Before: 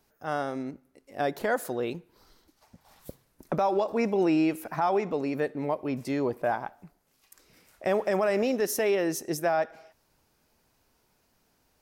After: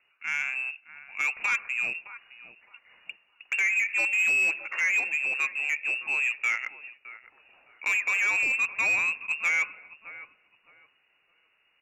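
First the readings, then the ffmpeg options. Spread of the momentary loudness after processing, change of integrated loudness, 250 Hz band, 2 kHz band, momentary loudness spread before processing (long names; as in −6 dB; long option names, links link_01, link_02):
21 LU, +3.0 dB, below −25 dB, +14.0 dB, 9 LU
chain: -filter_complex "[0:a]asplit=2[link_01][link_02];[link_02]acrusher=bits=2:mode=log:mix=0:aa=0.000001,volume=-11.5dB[link_03];[link_01][link_03]amix=inputs=2:normalize=0,lowpass=frequency=2500:width_type=q:width=0.5098,lowpass=frequency=2500:width_type=q:width=0.6013,lowpass=frequency=2500:width_type=q:width=0.9,lowpass=frequency=2500:width_type=q:width=2.563,afreqshift=-2900,asplit=2[link_04][link_05];[link_05]adelay=614,lowpass=frequency=1200:poles=1,volume=-14dB,asplit=2[link_06][link_07];[link_07]adelay=614,lowpass=frequency=1200:poles=1,volume=0.33,asplit=2[link_08][link_09];[link_09]adelay=614,lowpass=frequency=1200:poles=1,volume=0.33[link_10];[link_04][link_06][link_08][link_10]amix=inputs=4:normalize=0,asoftclip=type=tanh:threshold=-19dB"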